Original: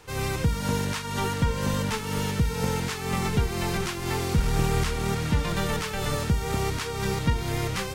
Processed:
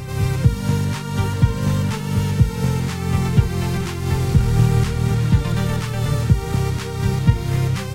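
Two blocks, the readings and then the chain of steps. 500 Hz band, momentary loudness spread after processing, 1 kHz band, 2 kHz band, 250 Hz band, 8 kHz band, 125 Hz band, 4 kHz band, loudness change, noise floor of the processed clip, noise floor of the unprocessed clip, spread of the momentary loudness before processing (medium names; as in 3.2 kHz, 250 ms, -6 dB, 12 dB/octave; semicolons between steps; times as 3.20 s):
+2.0 dB, 5 LU, +0.5 dB, +0.5 dB, +7.0 dB, +0.5 dB, +10.5 dB, +0.5 dB, +7.5 dB, -27 dBFS, -33 dBFS, 3 LU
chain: peaking EQ 120 Hz +14 dB 1.2 oct; on a send: reverse echo 240 ms -9.5 dB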